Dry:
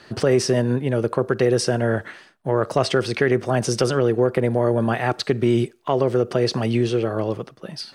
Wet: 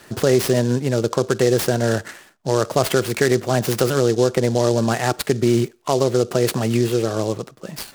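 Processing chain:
short delay modulated by noise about 5,000 Hz, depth 0.045 ms
level +1.5 dB

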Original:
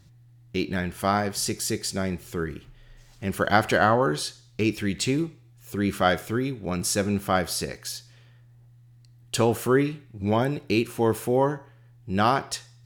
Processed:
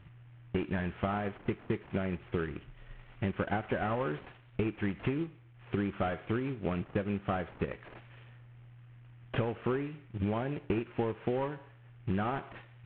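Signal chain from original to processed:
variable-slope delta modulation 16 kbit/s
transient designer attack +5 dB, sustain −3 dB
downward compressor 12 to 1, threshold −28 dBFS, peak gain reduction 14.5 dB

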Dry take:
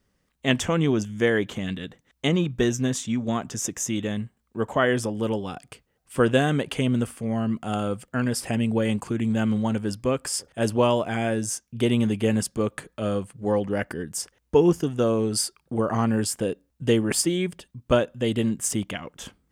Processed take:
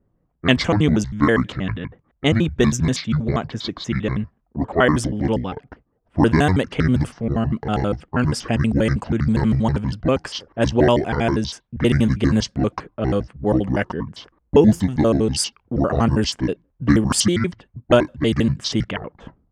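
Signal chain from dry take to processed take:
pitch shifter gated in a rhythm −8.5 semitones, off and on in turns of 80 ms
low-pass that shuts in the quiet parts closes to 720 Hz, open at −19 dBFS
level +6 dB

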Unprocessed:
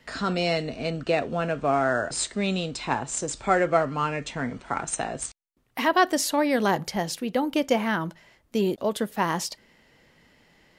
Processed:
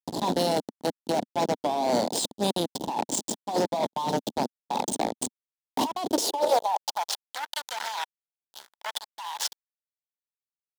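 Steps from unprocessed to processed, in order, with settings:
low shelf with overshoot 710 Hz −12.5 dB, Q 3
hum removal 226.2 Hz, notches 26
slack as between gear wheels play −22 dBFS
elliptic band-stop filter 900–3,300 Hz
gain into a clipping stage and back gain 23 dB
compressor whose output falls as the input rises −37 dBFS, ratio −1
dynamic equaliser 540 Hz, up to +5 dB, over −45 dBFS, Q 1.5
leveller curve on the samples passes 3
high-pass filter sweep 240 Hz → 1,500 Hz, 0:05.99–0:07.21

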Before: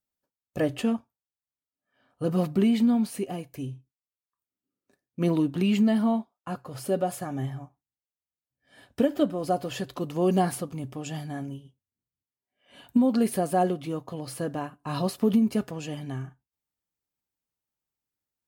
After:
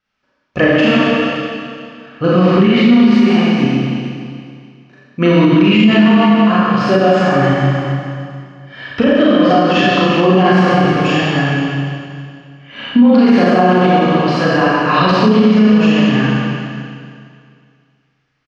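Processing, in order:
flat-topped bell 1,800 Hz +8.5 dB
single-tap delay 455 ms −21 dB
four-comb reverb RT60 2.2 s, combs from 29 ms, DRR −9 dB
in parallel at −1 dB: downward compressor, threshold −22 dBFS, peak gain reduction 15 dB
on the sum: Butterworth low-pass 5,600 Hz 36 dB per octave
boost into a limiter +7 dB
level −1 dB

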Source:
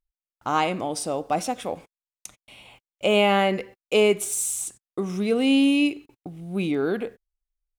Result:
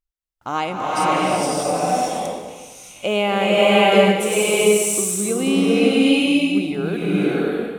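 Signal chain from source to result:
slow-attack reverb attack 620 ms, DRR −7 dB
level −1 dB

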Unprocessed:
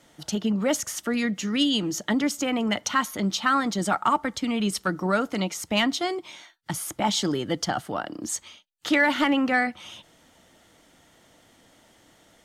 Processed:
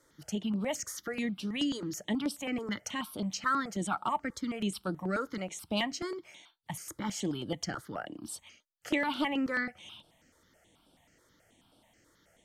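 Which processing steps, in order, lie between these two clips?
step-sequenced phaser 9.3 Hz 740–6,700 Hz
level −6 dB

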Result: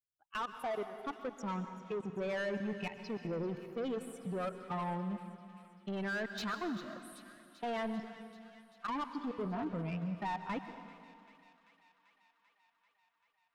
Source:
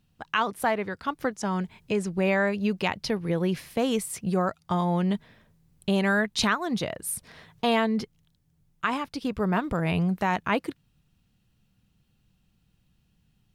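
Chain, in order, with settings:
spectral dynamics exaggerated over time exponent 2
0:09.17–0:09.65: hum removal 99.21 Hz, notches 37
harmonic and percussive parts rebalanced percussive −13 dB
brickwall limiter −28.5 dBFS, peak gain reduction 11 dB
output level in coarse steps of 21 dB
mid-hump overdrive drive 22 dB, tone 2,300 Hz, clips at −31 dBFS
delay with a high-pass on its return 390 ms, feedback 75%, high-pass 1,700 Hz, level −16 dB
dense smooth reverb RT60 2.3 s, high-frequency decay 0.8×, pre-delay 110 ms, DRR 9 dB
level +1.5 dB

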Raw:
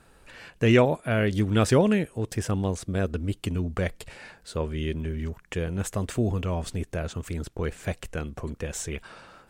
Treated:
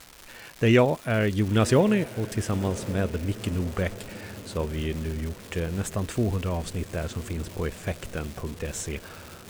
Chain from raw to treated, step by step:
on a send: feedback delay with all-pass diffusion 1,074 ms, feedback 56%, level −16 dB
on the sum: surface crackle 510 per second −33 dBFS

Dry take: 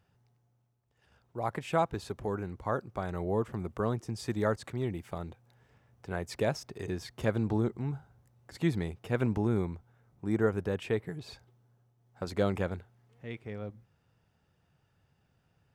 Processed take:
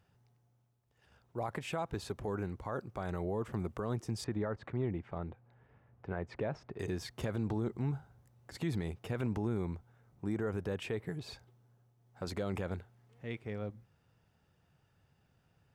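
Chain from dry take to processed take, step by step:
0:04.24–0:06.79: low-pass filter 2,000 Hz 12 dB per octave
brickwall limiter −26 dBFS, peak gain reduction 11 dB

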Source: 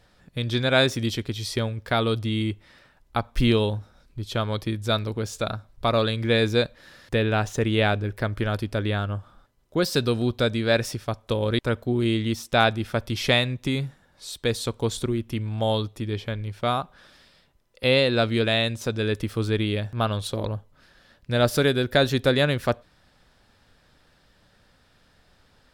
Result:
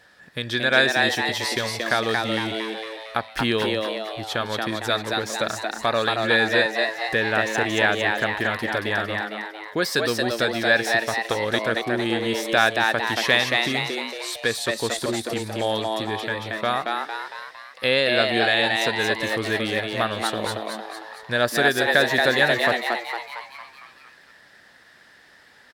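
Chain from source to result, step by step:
high-pass filter 400 Hz 6 dB per octave
parametric band 1,700 Hz +12 dB 0.22 octaves
in parallel at 0 dB: downward compressor, threshold −32 dBFS, peak gain reduction 18 dB
on the sum: echo with shifted repeats 228 ms, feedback 54%, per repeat +110 Hz, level −3 dB
level −1 dB

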